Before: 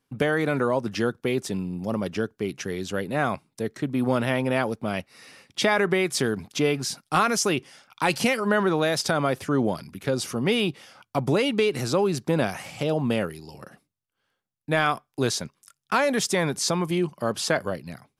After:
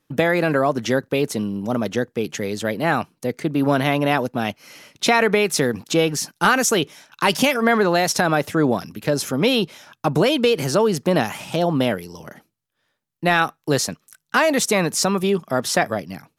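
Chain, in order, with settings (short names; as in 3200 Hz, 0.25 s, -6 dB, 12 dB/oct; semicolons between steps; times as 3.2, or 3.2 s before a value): varispeed +11%; gain +5 dB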